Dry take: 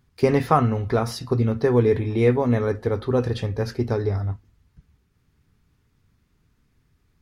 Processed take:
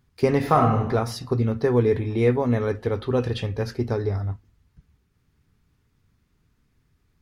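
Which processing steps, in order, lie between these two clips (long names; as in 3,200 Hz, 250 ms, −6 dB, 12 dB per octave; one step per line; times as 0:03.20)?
0:00.37–0:00.80: thrown reverb, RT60 0.89 s, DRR 1.5 dB
0:02.61–0:03.64: parametric band 2,900 Hz +7 dB 0.65 octaves
level −1.5 dB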